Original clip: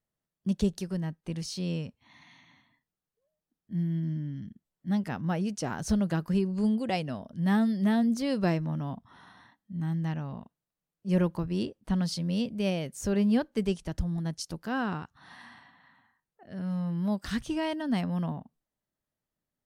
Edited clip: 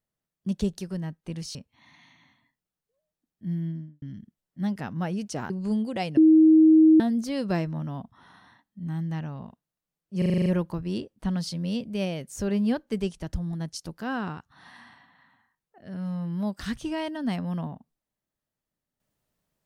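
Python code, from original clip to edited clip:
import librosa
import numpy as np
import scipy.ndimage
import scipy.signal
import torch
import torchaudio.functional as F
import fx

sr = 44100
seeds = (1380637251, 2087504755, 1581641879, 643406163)

y = fx.studio_fade_out(x, sr, start_s=3.88, length_s=0.42)
y = fx.edit(y, sr, fx.cut(start_s=1.55, length_s=0.28),
    fx.cut(start_s=5.78, length_s=0.65),
    fx.bleep(start_s=7.1, length_s=0.83, hz=316.0, db=-12.0),
    fx.stutter(start_s=11.11, slice_s=0.04, count=8), tone=tone)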